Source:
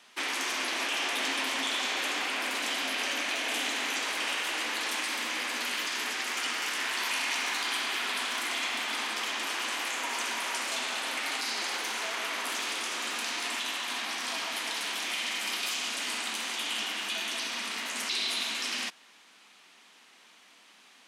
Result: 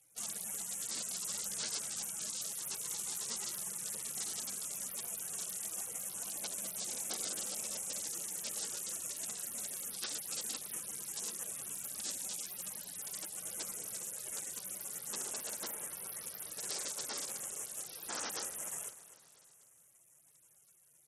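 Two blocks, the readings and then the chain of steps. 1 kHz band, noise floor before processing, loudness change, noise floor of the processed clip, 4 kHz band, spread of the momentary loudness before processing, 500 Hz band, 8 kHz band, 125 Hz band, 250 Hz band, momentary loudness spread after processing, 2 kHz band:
-18.5 dB, -58 dBFS, -8.5 dB, -65 dBFS, -15.5 dB, 3 LU, -11.5 dB, 0.0 dB, n/a, -12.5 dB, 4 LU, -22.5 dB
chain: spectral gate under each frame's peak -20 dB weak; in parallel at -2 dB: compressor 4:1, threshold -48 dBFS, peak gain reduction 6.5 dB; on the sum: feedback echo 0.249 s, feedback 55%, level -15 dB; gain +4.5 dB; SBC 64 kbps 48000 Hz

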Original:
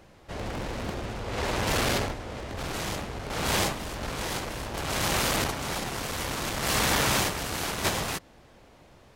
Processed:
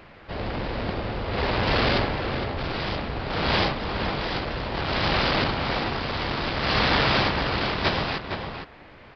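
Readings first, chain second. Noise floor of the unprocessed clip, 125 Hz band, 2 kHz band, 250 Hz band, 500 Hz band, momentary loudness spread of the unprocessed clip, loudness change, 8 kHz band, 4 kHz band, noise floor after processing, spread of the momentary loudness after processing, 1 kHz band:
-55 dBFS, +5.0 dB, +4.5 dB, +5.0 dB, +5.0 dB, 10 LU, +3.5 dB, under -20 dB, +4.0 dB, -48 dBFS, 9 LU, +5.0 dB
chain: outdoor echo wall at 79 m, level -6 dB; downsampling 11025 Hz; band noise 160–2400 Hz -56 dBFS; gain +4 dB

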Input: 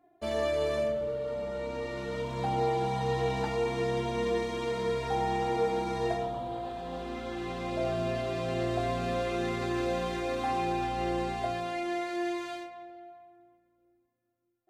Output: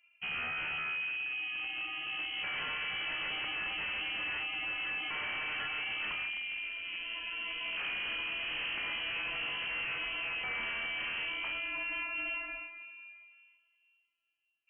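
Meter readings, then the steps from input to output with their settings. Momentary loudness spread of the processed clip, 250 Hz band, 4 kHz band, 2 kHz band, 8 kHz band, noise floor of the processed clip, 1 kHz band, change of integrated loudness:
3 LU, -20.5 dB, +6.5 dB, +7.5 dB, under -30 dB, -74 dBFS, -13.0 dB, -3.0 dB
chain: wavefolder -29 dBFS; inverted band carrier 3100 Hz; gain -3 dB

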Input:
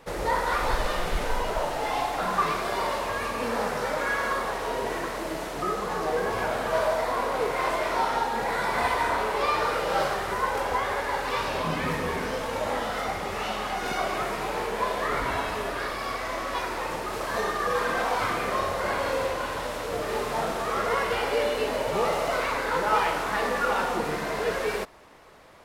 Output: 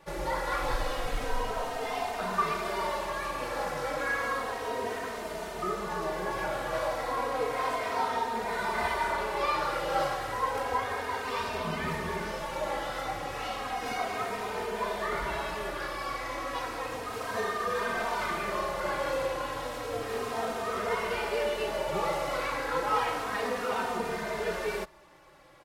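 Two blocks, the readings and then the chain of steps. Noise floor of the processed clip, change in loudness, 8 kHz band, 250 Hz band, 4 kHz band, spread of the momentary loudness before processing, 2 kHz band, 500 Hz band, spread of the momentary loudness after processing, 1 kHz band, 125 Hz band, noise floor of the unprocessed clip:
-38 dBFS, -4.5 dB, -4.5 dB, -4.5 dB, -4.5 dB, 5 LU, -4.5 dB, -4.5 dB, 5 LU, -4.5 dB, -4.5 dB, -33 dBFS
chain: endless flanger 3 ms -0.32 Hz; gain -1.5 dB

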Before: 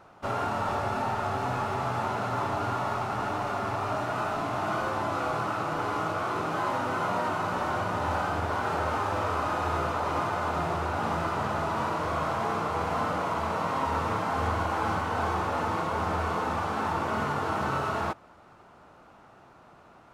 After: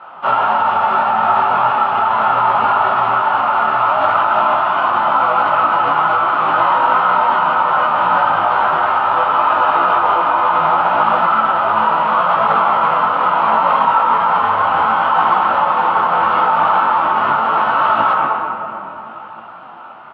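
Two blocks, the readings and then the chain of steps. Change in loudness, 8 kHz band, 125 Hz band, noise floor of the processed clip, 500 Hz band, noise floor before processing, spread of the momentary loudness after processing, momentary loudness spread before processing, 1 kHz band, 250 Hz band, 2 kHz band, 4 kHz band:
+15.5 dB, under -15 dB, -2.0 dB, -33 dBFS, +10.0 dB, -54 dBFS, 2 LU, 2 LU, +17.5 dB, +4.0 dB, +14.5 dB, +12.0 dB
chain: speaker cabinet 290–3200 Hz, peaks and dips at 300 Hz -9 dB, 440 Hz -9 dB, 900 Hz +7 dB, 1300 Hz +8 dB, 2000 Hz -3 dB, 3100 Hz +7 dB; doubler 18 ms -6 dB; shoebox room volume 140 m³, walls hard, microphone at 0.37 m; maximiser +16.5 dB; detuned doubles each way 25 cents; gain -1 dB

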